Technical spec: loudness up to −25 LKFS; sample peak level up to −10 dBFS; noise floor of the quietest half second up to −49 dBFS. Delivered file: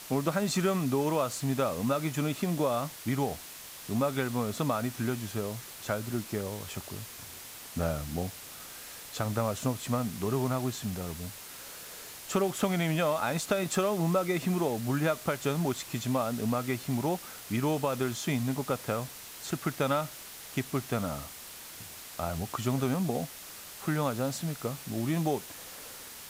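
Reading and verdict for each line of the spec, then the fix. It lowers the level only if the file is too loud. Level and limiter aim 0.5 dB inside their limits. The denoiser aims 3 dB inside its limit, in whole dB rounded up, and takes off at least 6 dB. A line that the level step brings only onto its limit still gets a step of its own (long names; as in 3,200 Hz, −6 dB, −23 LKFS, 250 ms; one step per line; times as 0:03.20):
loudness −31.5 LKFS: in spec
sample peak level −15.5 dBFS: in spec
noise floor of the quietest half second −46 dBFS: out of spec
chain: broadband denoise 6 dB, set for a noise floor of −46 dBFS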